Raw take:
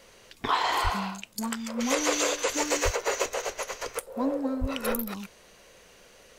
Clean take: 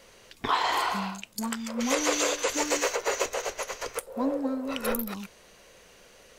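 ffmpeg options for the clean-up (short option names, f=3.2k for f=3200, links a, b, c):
-filter_complex "[0:a]asplit=3[a][b][c];[a]afade=t=out:st=0.83:d=0.02[d];[b]highpass=f=140:w=0.5412,highpass=f=140:w=1.3066,afade=t=in:st=0.83:d=0.02,afade=t=out:st=0.95:d=0.02[e];[c]afade=t=in:st=0.95:d=0.02[f];[d][e][f]amix=inputs=3:normalize=0,asplit=3[g][h][i];[g]afade=t=out:st=2.84:d=0.02[j];[h]highpass=f=140:w=0.5412,highpass=f=140:w=1.3066,afade=t=in:st=2.84:d=0.02,afade=t=out:st=2.96:d=0.02[k];[i]afade=t=in:st=2.96:d=0.02[l];[j][k][l]amix=inputs=3:normalize=0,asplit=3[m][n][o];[m]afade=t=out:st=4.6:d=0.02[p];[n]highpass=f=140:w=0.5412,highpass=f=140:w=1.3066,afade=t=in:st=4.6:d=0.02,afade=t=out:st=4.72:d=0.02[q];[o]afade=t=in:st=4.72:d=0.02[r];[p][q][r]amix=inputs=3:normalize=0"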